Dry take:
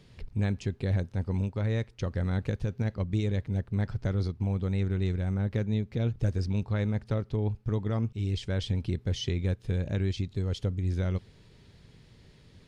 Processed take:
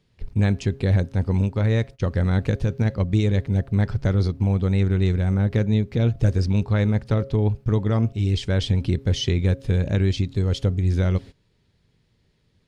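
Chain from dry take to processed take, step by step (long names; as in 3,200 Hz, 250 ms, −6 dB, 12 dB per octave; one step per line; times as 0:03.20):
hum removal 136.3 Hz, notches 5
noise gate −43 dBFS, range −18 dB
level +8.5 dB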